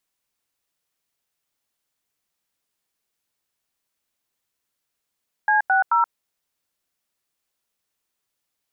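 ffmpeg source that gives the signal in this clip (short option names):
-f lavfi -i "aevalsrc='0.133*clip(min(mod(t,0.217),0.127-mod(t,0.217))/0.002,0,1)*(eq(floor(t/0.217),0)*(sin(2*PI*852*mod(t,0.217))+sin(2*PI*1633*mod(t,0.217)))+eq(floor(t/0.217),1)*(sin(2*PI*770*mod(t,0.217))+sin(2*PI*1477*mod(t,0.217)))+eq(floor(t/0.217),2)*(sin(2*PI*941*mod(t,0.217))+sin(2*PI*1336*mod(t,0.217))))':d=0.651:s=44100"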